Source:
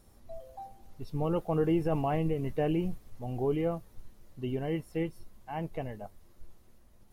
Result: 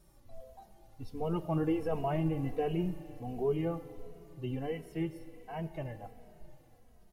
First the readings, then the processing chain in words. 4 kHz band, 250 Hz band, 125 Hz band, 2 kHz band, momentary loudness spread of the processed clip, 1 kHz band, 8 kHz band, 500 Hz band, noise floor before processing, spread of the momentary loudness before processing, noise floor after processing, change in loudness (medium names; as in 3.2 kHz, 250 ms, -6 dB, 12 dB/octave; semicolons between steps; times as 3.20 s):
-2.5 dB, -2.5 dB, -2.5 dB, -3.0 dB, 19 LU, -3.0 dB, no reading, -3.0 dB, -58 dBFS, 19 LU, -61 dBFS, -2.5 dB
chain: Schroeder reverb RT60 3.6 s, combs from 29 ms, DRR 12.5 dB; endless flanger 2.8 ms -1.4 Hz